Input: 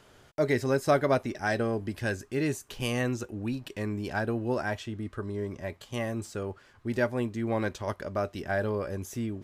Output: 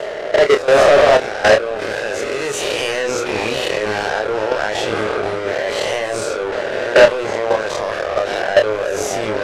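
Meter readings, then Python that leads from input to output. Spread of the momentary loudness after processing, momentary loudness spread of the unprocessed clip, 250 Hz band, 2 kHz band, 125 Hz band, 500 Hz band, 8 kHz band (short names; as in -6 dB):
10 LU, 10 LU, +3.5 dB, +15.5 dB, -1.0 dB, +16.0 dB, +16.5 dB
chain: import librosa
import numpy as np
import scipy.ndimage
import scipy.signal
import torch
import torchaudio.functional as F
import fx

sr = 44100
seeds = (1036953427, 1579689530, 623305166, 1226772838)

y = fx.spec_swells(x, sr, rise_s=0.95)
y = fx.highpass(y, sr, hz=130.0, slope=6)
y = fx.low_shelf_res(y, sr, hz=350.0, db=-10.5, q=3.0)
y = fx.echo_stepped(y, sr, ms=312, hz=280.0, octaves=1.4, feedback_pct=70, wet_db=-9.0)
y = fx.level_steps(y, sr, step_db=22)
y = fx.leveller(y, sr, passes=5)
y = fx.rider(y, sr, range_db=3, speed_s=2.0)
y = scipy.signal.sosfilt(scipy.signal.butter(2, 7400.0, 'lowpass', fs=sr, output='sos'), y)
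y = fx.doubler(y, sr, ms=28.0, db=-6.0)
y = y * librosa.db_to_amplitude(3.5)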